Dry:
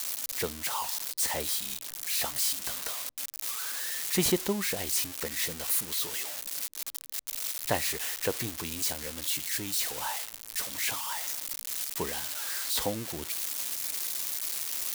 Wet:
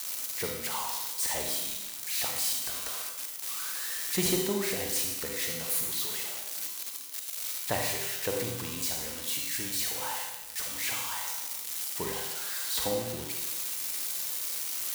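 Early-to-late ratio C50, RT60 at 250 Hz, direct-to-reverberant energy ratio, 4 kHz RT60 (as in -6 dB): 2.5 dB, 1.0 s, 1.0 dB, 1.0 s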